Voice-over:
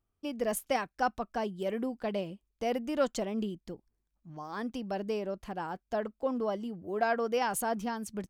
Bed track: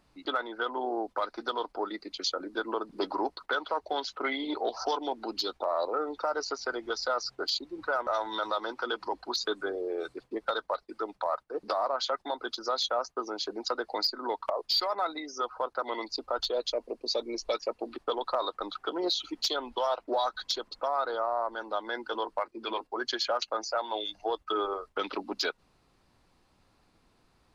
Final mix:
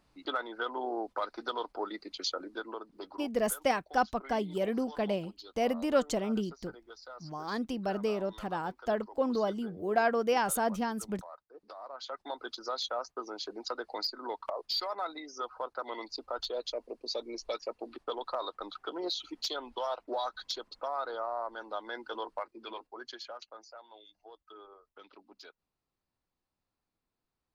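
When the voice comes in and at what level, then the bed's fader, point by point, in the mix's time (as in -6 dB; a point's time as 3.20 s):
2.95 s, +2.0 dB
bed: 2.35 s -3 dB
3.34 s -18 dB
11.76 s -18 dB
12.31 s -5.5 dB
22.35 s -5.5 dB
23.98 s -22 dB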